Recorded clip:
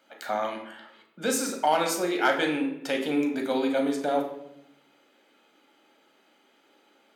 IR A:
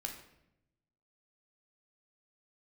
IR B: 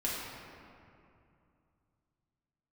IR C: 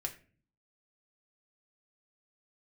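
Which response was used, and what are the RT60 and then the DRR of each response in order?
A; 0.85, 2.6, 0.40 seconds; 2.0, −6.5, 2.5 decibels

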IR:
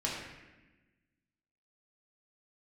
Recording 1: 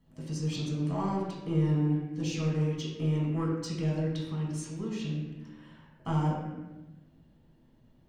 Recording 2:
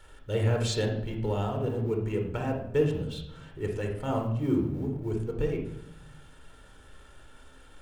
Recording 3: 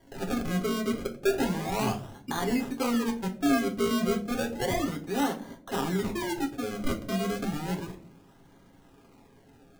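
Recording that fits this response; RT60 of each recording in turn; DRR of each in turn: 1; 1.1, 0.80, 0.50 seconds; −6.0, 2.0, 2.0 decibels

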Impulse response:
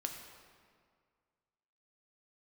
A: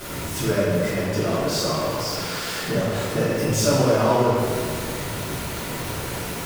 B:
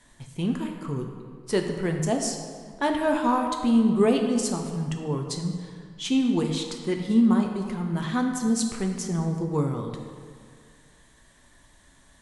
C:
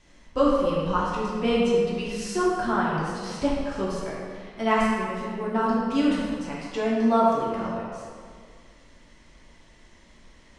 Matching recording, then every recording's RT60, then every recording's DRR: B; 2.0, 2.0, 2.0 seconds; −11.5, 3.0, −7.0 decibels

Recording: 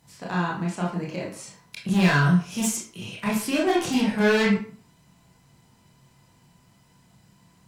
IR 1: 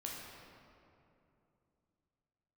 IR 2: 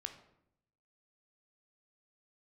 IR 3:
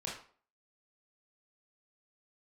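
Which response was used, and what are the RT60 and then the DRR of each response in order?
3; 2.8, 0.75, 0.45 seconds; −3.0, 6.0, −4.5 decibels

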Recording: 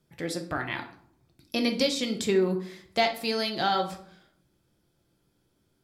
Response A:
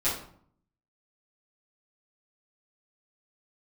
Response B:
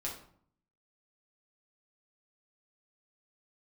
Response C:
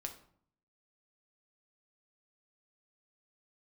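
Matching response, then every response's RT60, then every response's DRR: C; 0.60, 0.60, 0.60 seconds; −12.5, −4.0, 4.0 decibels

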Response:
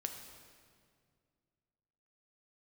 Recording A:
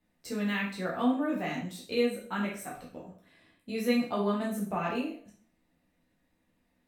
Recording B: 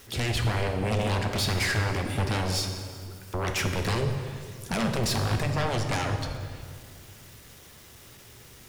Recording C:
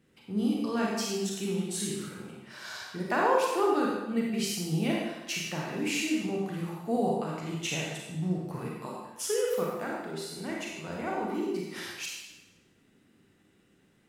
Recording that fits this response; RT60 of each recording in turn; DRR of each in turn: B; 0.50, 2.1, 1.0 seconds; −4.5, 4.0, −3.0 decibels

